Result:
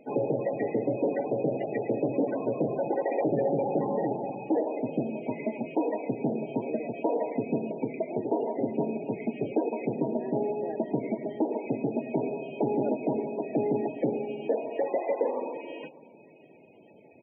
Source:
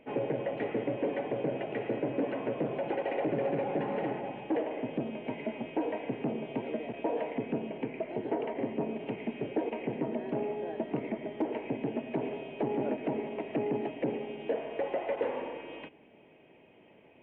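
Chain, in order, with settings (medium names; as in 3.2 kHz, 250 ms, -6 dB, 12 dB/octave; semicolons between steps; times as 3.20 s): delay 599 ms -21.5 dB; loudest bins only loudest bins 32; trim +4.5 dB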